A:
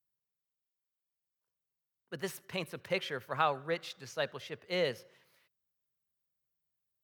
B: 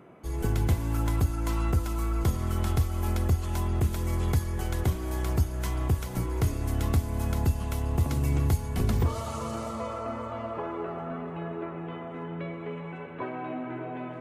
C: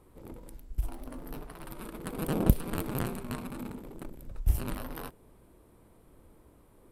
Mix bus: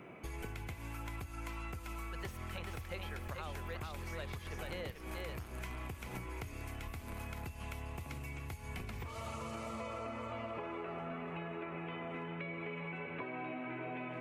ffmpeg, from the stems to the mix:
ffmpeg -i stem1.wav -i stem2.wav -i stem3.wav -filter_complex "[0:a]alimiter=limit=-21dB:level=0:latency=1:release=460,volume=-4.5dB,asplit=2[link_01][link_02];[link_02]volume=-4dB[link_03];[1:a]equalizer=frequency=2400:width_type=o:width=0.55:gain=11.5,volume=-1dB[link_04];[2:a]adelay=2400,volume=-4.5dB[link_05];[link_04][link_05]amix=inputs=2:normalize=0,acompressor=threshold=-34dB:ratio=5,volume=0dB[link_06];[link_03]aecho=0:1:438:1[link_07];[link_01][link_06][link_07]amix=inputs=3:normalize=0,acrossover=split=680|2800[link_08][link_09][link_10];[link_08]acompressor=threshold=-43dB:ratio=4[link_11];[link_09]acompressor=threshold=-46dB:ratio=4[link_12];[link_10]acompressor=threshold=-56dB:ratio=4[link_13];[link_11][link_12][link_13]amix=inputs=3:normalize=0" out.wav

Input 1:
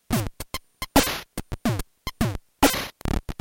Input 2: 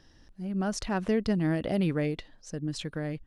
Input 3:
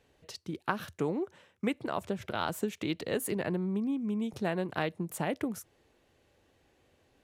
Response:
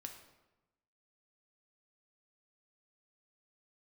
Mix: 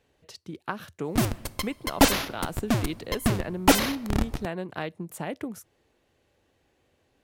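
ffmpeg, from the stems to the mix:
-filter_complex "[0:a]adelay=1050,volume=-3dB,asplit=2[link_01][link_02];[link_02]volume=-3.5dB[link_03];[2:a]volume=-1dB[link_04];[3:a]atrim=start_sample=2205[link_05];[link_03][link_05]afir=irnorm=-1:irlink=0[link_06];[link_01][link_04][link_06]amix=inputs=3:normalize=0"

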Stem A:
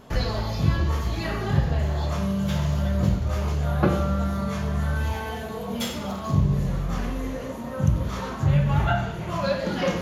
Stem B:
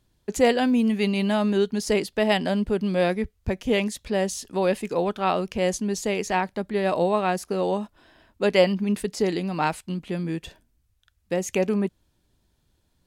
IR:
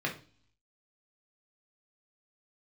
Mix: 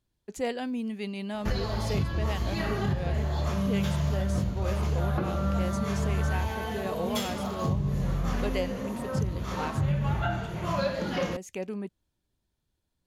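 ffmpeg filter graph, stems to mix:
-filter_complex "[0:a]adelay=1350,volume=-1.5dB[link_01];[1:a]volume=-11.5dB[link_02];[link_01][link_02]amix=inputs=2:normalize=0,alimiter=limit=-18dB:level=0:latency=1:release=388"

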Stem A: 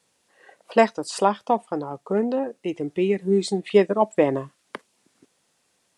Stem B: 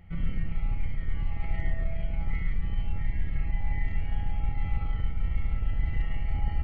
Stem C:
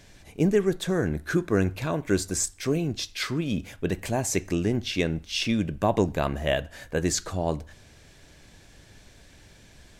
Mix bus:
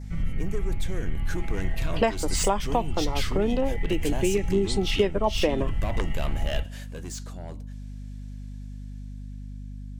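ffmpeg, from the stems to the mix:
ffmpeg -i stem1.wav -i stem2.wav -i stem3.wav -filter_complex "[0:a]adelay=1250,volume=2.5dB[link_01];[1:a]volume=2dB[link_02];[2:a]highshelf=frequency=4200:gain=8,dynaudnorm=framelen=440:gausssize=7:maxgain=10dB,asoftclip=type=tanh:threshold=-16dB,volume=-9dB,afade=type=out:start_time=6.61:duration=0.37:silence=0.334965[link_03];[link_01][link_02][link_03]amix=inputs=3:normalize=0,adynamicequalizer=threshold=0.00355:dfrequency=3000:dqfactor=3.2:tfrequency=3000:tqfactor=3.2:attack=5:release=100:ratio=0.375:range=3.5:mode=boostabove:tftype=bell,aeval=exprs='val(0)+0.0158*(sin(2*PI*50*n/s)+sin(2*PI*2*50*n/s)/2+sin(2*PI*3*50*n/s)/3+sin(2*PI*4*50*n/s)/4+sin(2*PI*5*50*n/s)/5)':channel_layout=same,acompressor=threshold=-20dB:ratio=4" out.wav

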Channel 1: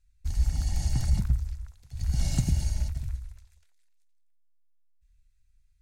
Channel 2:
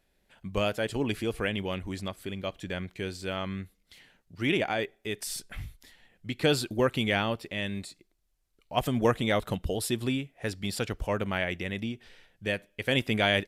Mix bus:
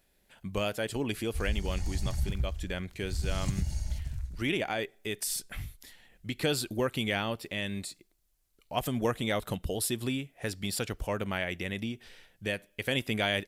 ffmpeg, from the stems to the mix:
ffmpeg -i stem1.wav -i stem2.wav -filter_complex "[0:a]adelay=1100,volume=-1.5dB[link_01];[1:a]crystalizer=i=1:c=0,volume=0.5dB[link_02];[link_01][link_02]amix=inputs=2:normalize=0,acompressor=threshold=-34dB:ratio=1.5" out.wav

